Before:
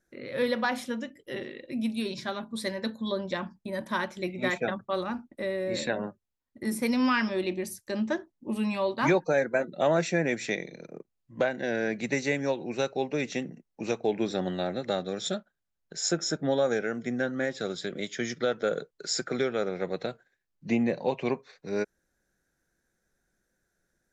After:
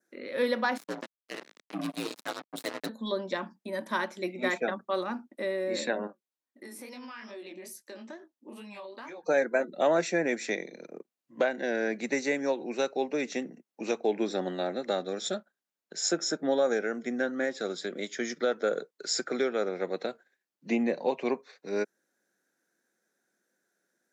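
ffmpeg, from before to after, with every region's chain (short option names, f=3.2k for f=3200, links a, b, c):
-filter_complex "[0:a]asettb=1/sr,asplit=3[a][b][c];[a]atrim=end=0.774[d];[b]atrim=start=0.77:end=2.89,asetpts=PTS-STARTPTS,afade=t=in:d=0.004:c=qsin,afade=t=out:st=2.116:d=0.004:c=qsin,acrusher=bits=4:mix=0:aa=0.5,aeval=exprs='val(0)*sin(2*PI*57*n/s)':c=same[e];[c]atrim=start=2.886[f];[d][e]acrossfade=d=0.004:c1=hsin:c2=qsin[g];[g][f]acrossfade=d=0.004:c1=qsin:c2=hsin,asettb=1/sr,asplit=3[h][i][j];[h]atrim=end=6.074[k];[i]atrim=start=6.07:end=9.24,asetpts=PTS-STARTPTS,afade=t=in:d=0.004:c=qsin,afade=t=out:st=3.166:d=0.004:c=qsin,flanger=delay=18.5:depth=7.7:speed=2.3,equalizer=f=120:w=0.78:g=-9,acompressor=threshold=-39dB:ratio=16:attack=3.2:release=140:knee=1:detection=peak[l];[j]atrim=start=9.236[m];[k][l]acrossfade=d=0.004:c1=hsin:c2=qsin[n];[n][m]acrossfade=d=0.004:c1=qsin:c2=hsin,highpass=f=220:w=0.5412,highpass=f=220:w=1.3066,adynamicequalizer=threshold=0.00251:dfrequency=3000:dqfactor=2.3:tfrequency=3000:tqfactor=2.3:attack=5:release=100:ratio=0.375:range=3:mode=cutabove:tftype=bell"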